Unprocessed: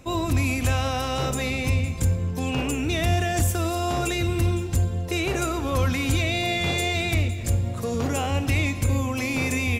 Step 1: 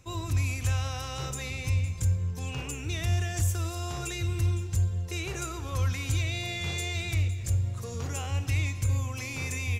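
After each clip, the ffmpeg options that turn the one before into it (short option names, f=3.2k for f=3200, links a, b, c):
-af "equalizer=f=100:t=o:w=0.67:g=7,equalizer=f=250:t=o:w=0.67:g=-9,equalizer=f=630:t=o:w=0.67:g=-7,equalizer=f=6.3k:t=o:w=0.67:g=6,volume=-8.5dB"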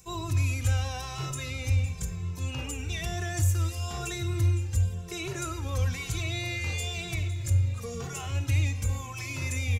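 -filter_complex "[0:a]acrossover=split=720|5800[a][b][c];[c]acompressor=mode=upward:threshold=-52dB:ratio=2.5[d];[a][b][d]amix=inputs=3:normalize=0,aecho=1:1:711|1422|2133|2844|3555:0.106|0.0625|0.0369|0.0218|0.0128,asplit=2[e][f];[f]adelay=2.2,afreqshift=-1[g];[e][g]amix=inputs=2:normalize=1,volume=3dB"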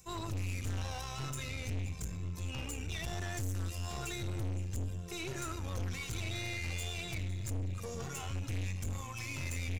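-af "aeval=exprs='(tanh(44.7*val(0)+0.55)-tanh(0.55))/44.7':c=same,volume=-1.5dB"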